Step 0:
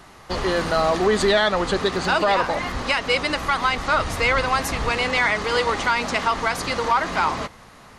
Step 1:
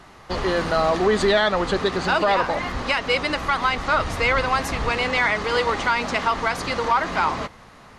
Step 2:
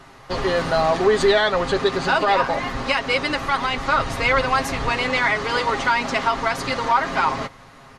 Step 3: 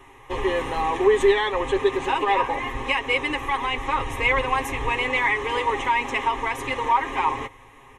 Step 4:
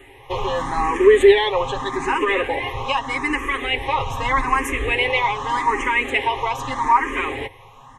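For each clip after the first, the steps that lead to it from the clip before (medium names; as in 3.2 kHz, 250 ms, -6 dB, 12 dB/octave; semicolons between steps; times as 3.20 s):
treble shelf 7.3 kHz -8.5 dB
comb 7.4 ms, depth 55%
static phaser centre 950 Hz, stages 8
barber-pole phaser +0.82 Hz; trim +6.5 dB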